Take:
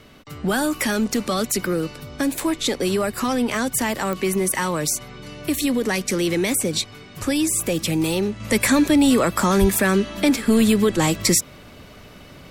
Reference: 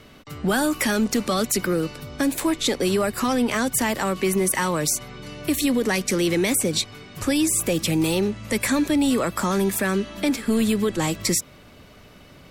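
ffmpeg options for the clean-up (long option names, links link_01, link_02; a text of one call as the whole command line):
ffmpeg -i in.wav -filter_complex "[0:a]adeclick=threshold=4,asplit=3[link_01][link_02][link_03];[link_01]afade=type=out:start_time=9.6:duration=0.02[link_04];[link_02]highpass=frequency=140:width=0.5412,highpass=frequency=140:width=1.3066,afade=type=in:start_time=9.6:duration=0.02,afade=type=out:start_time=9.72:duration=0.02[link_05];[link_03]afade=type=in:start_time=9.72:duration=0.02[link_06];[link_04][link_05][link_06]amix=inputs=3:normalize=0,asetnsamples=nb_out_samples=441:pad=0,asendcmd='8.4 volume volume -4.5dB',volume=0dB" out.wav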